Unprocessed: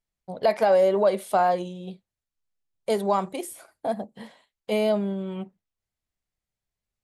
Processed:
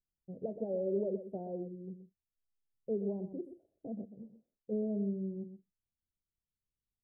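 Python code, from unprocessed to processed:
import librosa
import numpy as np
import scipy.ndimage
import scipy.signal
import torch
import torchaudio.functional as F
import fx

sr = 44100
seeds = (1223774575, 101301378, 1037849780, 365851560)

p1 = scipy.signal.sosfilt(scipy.signal.cheby2(4, 50, 1100.0, 'lowpass', fs=sr, output='sos'), x)
p2 = p1 + fx.echo_single(p1, sr, ms=125, db=-11.0, dry=0)
y = p2 * 10.0 ** (-6.5 / 20.0)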